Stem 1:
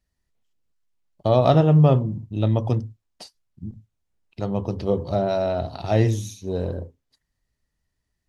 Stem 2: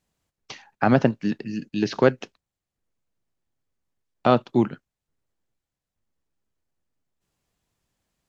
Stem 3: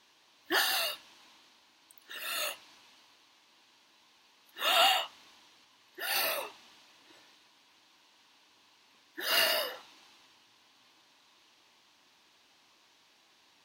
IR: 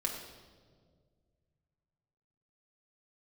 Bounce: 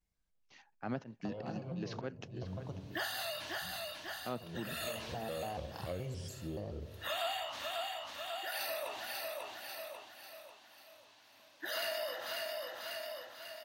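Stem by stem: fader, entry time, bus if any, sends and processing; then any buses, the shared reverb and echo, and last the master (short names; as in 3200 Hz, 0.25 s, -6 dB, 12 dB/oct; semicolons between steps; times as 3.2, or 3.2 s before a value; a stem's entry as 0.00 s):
-11.0 dB, 0.00 s, send -12.5 dB, no echo send, compressor, threshold -19 dBFS, peak gain reduction 9 dB; shaped vibrato square 3.5 Hz, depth 250 cents; auto duck -12 dB, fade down 1.80 s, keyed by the second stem
-8.5 dB, 0.00 s, no send, echo send -16 dB, gate -45 dBFS, range -8 dB; auto swell 0.125 s
-1.5 dB, 2.45 s, no send, echo send -7.5 dB, thirty-one-band EQ 100 Hz +6 dB, 400 Hz -6 dB, 630 Hz +11 dB, 1600 Hz +3 dB; sustainer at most 73 dB/s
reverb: on, RT60 1.8 s, pre-delay 6 ms
echo: feedback echo 0.543 s, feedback 42%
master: compressor 3:1, threshold -39 dBFS, peak gain reduction 15 dB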